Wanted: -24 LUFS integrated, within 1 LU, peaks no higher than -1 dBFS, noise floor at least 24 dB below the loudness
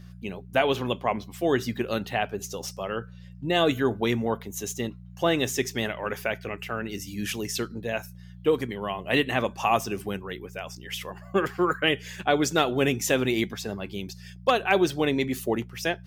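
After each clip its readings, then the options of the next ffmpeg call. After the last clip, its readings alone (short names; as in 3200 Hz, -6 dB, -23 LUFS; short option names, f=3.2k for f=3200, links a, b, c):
hum 60 Hz; harmonics up to 180 Hz; hum level -42 dBFS; loudness -27.0 LUFS; peak -7.5 dBFS; loudness target -24.0 LUFS
-> -af "bandreject=f=60:t=h:w=4,bandreject=f=120:t=h:w=4,bandreject=f=180:t=h:w=4"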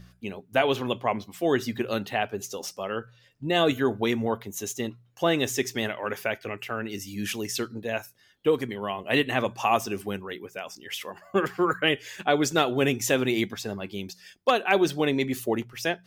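hum none; loudness -27.5 LUFS; peak -7.5 dBFS; loudness target -24.0 LUFS
-> -af "volume=3.5dB"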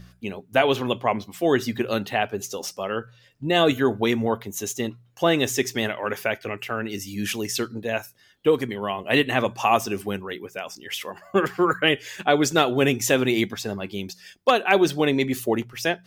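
loudness -24.0 LUFS; peak -4.0 dBFS; noise floor -56 dBFS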